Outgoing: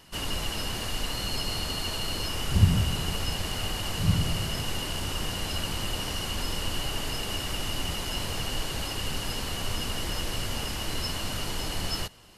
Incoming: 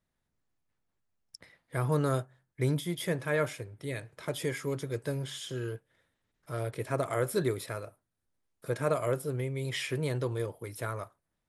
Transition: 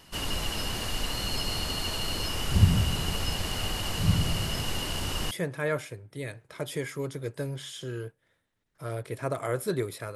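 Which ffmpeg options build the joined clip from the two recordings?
-filter_complex "[0:a]apad=whole_dur=10.15,atrim=end=10.15,atrim=end=5.312[a];[1:a]atrim=start=2.988:end=7.83[b];[a][b]acrossfade=d=0.004:c1=hsin:c2=hsin"

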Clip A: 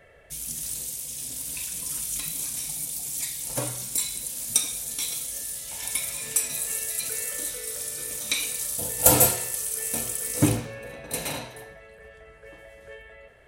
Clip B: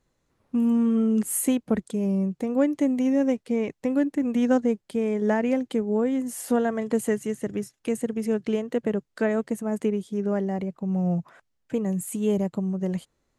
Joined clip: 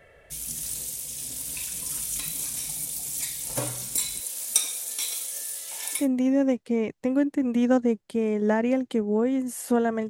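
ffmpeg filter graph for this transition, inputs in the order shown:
-filter_complex "[0:a]asettb=1/sr,asplit=3[a][b][c];[a]atrim=end=4.204[d];[b]atrim=start=4.2:end=6.08,asetpts=PTS-STARTPTS,afade=t=in:d=0.004:c=qsin,afade=t=out:st=1.876:d=0.004:c=qsin,highpass=430[e];[c]atrim=start=6.076[f];[d][e]acrossfade=d=0.004:c1=hsin:c2=qsin[g];[g][f]acrossfade=d=0.004:c1=qsin:c2=hsin,apad=whole_dur=10.09,atrim=end=10.09,atrim=end=6.08,asetpts=PTS-STARTPTS[h];[1:a]atrim=start=2.72:end=6.89,asetpts=PTS-STARTPTS[i];[h][i]acrossfade=d=0.16:c1=tri:c2=tri"

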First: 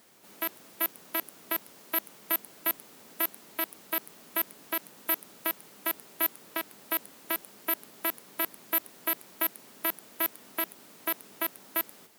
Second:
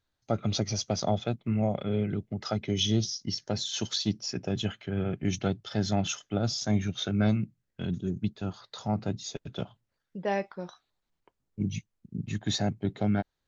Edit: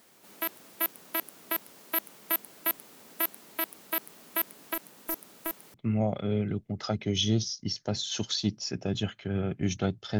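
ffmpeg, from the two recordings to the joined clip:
-filter_complex "[0:a]asettb=1/sr,asplit=3[a][b][c];[a]atrim=end=4.744[d];[b]atrim=start=4.74:end=5.74,asetpts=PTS-STARTPTS,afade=t=in:d=0.004:c=qsin,afade=t=out:st=0.996:d=0.004:c=qsin,aeval=exprs='(tanh(11.2*val(0)+0.35)-tanh(0.35))/11.2':c=same[e];[c]atrim=start=5.736[f];[d][e]acrossfade=d=0.004:c1=hsin:c2=qsin[g];[g][f]acrossfade=d=0.004:c1=qsin:c2=hsin,apad=whole_dur=10.19,atrim=end=10.19,atrim=end=5.742[h];[1:a]atrim=start=1.358:end=5.81[i];[h][i]acrossfade=d=0.004:c1=hsin:c2=hsin"

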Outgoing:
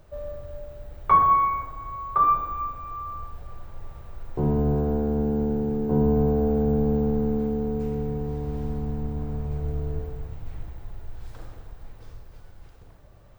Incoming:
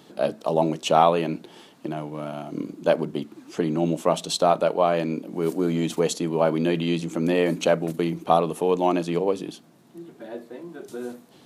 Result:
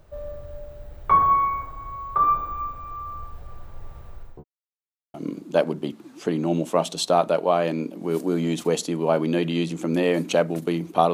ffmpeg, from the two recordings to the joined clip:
-filter_complex "[0:a]apad=whole_dur=11.13,atrim=end=11.13,asplit=2[a][b];[a]atrim=end=4.44,asetpts=PTS-STARTPTS,afade=t=out:st=4:d=0.44:c=qsin[c];[b]atrim=start=4.44:end=5.14,asetpts=PTS-STARTPTS,volume=0[d];[1:a]atrim=start=2.46:end=8.45,asetpts=PTS-STARTPTS,afade=t=in:d=0.004:c=hsin[e];[c][d][e]concat=n=3:v=0:a=1"

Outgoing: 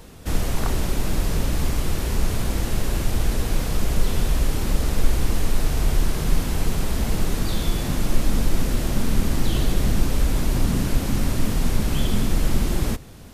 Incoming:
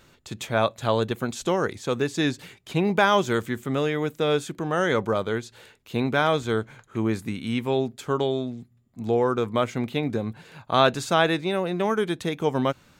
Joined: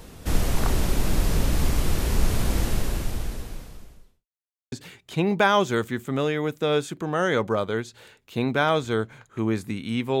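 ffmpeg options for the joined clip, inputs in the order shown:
-filter_complex "[0:a]apad=whole_dur=10.2,atrim=end=10.2,asplit=2[a][b];[a]atrim=end=4.26,asetpts=PTS-STARTPTS,afade=t=out:st=2.62:d=1.64:c=qua[c];[b]atrim=start=4.26:end=4.72,asetpts=PTS-STARTPTS,volume=0[d];[1:a]atrim=start=2.3:end=7.78,asetpts=PTS-STARTPTS,afade=t=in:d=0.004:c=hsin[e];[c][d][e]concat=n=3:v=0:a=1"

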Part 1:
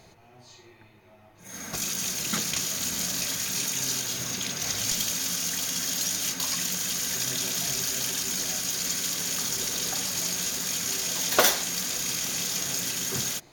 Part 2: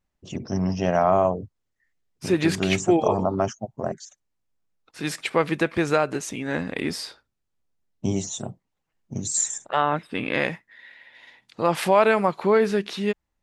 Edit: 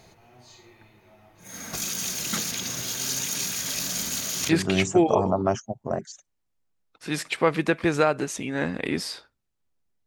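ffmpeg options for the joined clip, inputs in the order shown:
-filter_complex "[0:a]apad=whole_dur=10.06,atrim=end=10.06,asplit=2[a][b];[a]atrim=end=2.522[c];[b]atrim=start=2.518:end=4.492,asetpts=PTS-STARTPTS,areverse[d];[1:a]atrim=start=2.418:end=7.99[e];[c][d]acrossfade=d=0.004:c1=hsin:c2=hsin[f];[f][e]acrossfade=d=0.004:c1=hsin:c2=hsin"

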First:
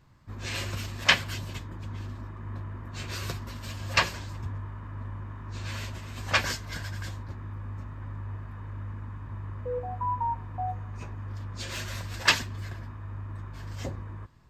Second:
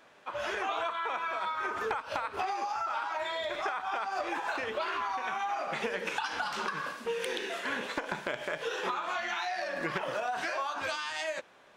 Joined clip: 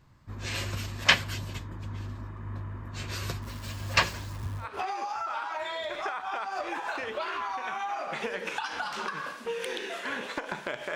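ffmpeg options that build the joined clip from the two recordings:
-filter_complex "[0:a]asettb=1/sr,asplit=3[a][b][c];[a]atrim=end=3.424[d];[b]atrim=start=3.42:end=4.69,asetpts=PTS-STARTPTS,afade=t=in:d=0.004:c=qsin,afade=t=out:st=1.266:d=0.004:c=qsin,acrusher=bits=9:dc=4:mix=0:aa=0.000001[e];[c]atrim=start=4.686[f];[d][e]acrossfade=d=0.004:c1=hsin:c2=qsin[g];[g][f]acrossfade=d=0.004:c1=qsin:c2=hsin,apad=whole_dur=10.95,atrim=end=10.95,atrim=end=4.69,asetpts=PTS-STARTPTS[h];[1:a]atrim=start=2.17:end=8.55,asetpts=PTS-STARTPTS[i];[h][i]acrossfade=d=0.12:c1=tri:c2=tri"

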